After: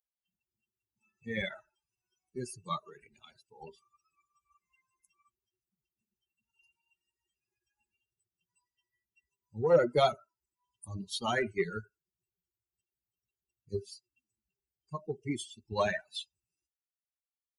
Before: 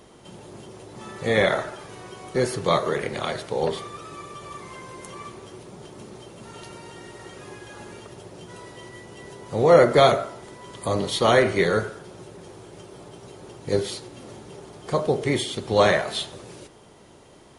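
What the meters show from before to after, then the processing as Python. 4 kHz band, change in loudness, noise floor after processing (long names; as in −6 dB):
−12.5 dB, −11.0 dB, below −85 dBFS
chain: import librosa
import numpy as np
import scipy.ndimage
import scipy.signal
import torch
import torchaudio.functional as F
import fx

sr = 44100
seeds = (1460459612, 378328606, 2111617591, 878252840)

p1 = fx.bin_expand(x, sr, power=3.0)
p2 = 10.0 ** (-14.5 / 20.0) * np.tanh(p1 / 10.0 ** (-14.5 / 20.0))
p3 = p1 + F.gain(torch.from_numpy(p2), -5.5).numpy()
y = F.gain(torch.from_numpy(p3), -8.5).numpy()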